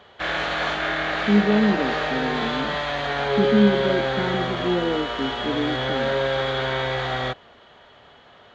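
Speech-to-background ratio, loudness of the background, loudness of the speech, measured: 0.0 dB, -24.5 LUFS, -24.5 LUFS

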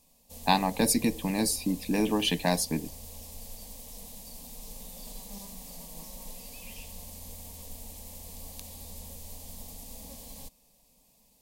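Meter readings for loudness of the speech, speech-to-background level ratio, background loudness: -27.5 LUFS, 16.0 dB, -43.5 LUFS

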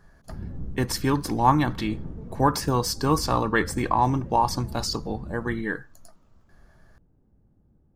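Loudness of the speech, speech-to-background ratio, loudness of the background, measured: -25.0 LUFS, 14.5 dB, -39.5 LUFS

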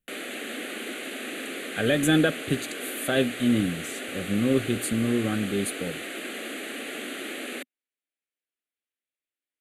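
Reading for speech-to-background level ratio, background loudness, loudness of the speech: 7.5 dB, -34.0 LUFS, -26.5 LUFS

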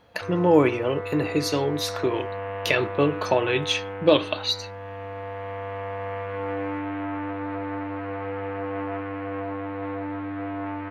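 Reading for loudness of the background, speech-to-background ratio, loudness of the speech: -32.5 LUFS, 8.5 dB, -24.0 LUFS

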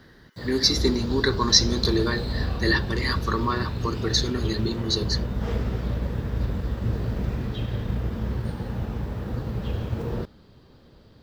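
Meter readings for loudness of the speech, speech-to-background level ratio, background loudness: -24.5 LUFS, 5.0 dB, -29.5 LUFS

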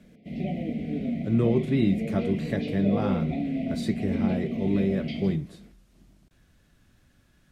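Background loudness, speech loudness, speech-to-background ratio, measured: -31.0 LUFS, -28.0 LUFS, 3.0 dB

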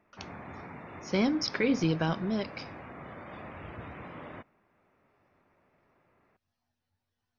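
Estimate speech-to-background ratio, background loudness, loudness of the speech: 15.5 dB, -45.0 LUFS, -29.5 LUFS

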